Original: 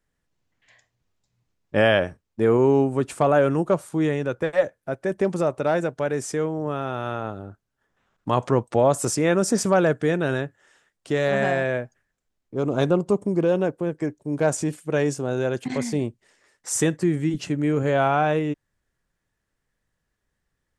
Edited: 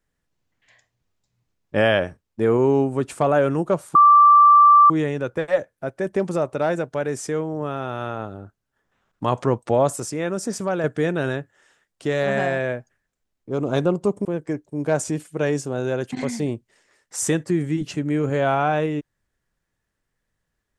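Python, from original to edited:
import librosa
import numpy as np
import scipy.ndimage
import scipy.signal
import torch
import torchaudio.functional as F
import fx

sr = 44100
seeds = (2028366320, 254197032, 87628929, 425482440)

y = fx.edit(x, sr, fx.insert_tone(at_s=3.95, length_s=0.95, hz=1170.0, db=-8.0),
    fx.clip_gain(start_s=9.01, length_s=0.88, db=-5.5),
    fx.cut(start_s=13.3, length_s=0.48), tone=tone)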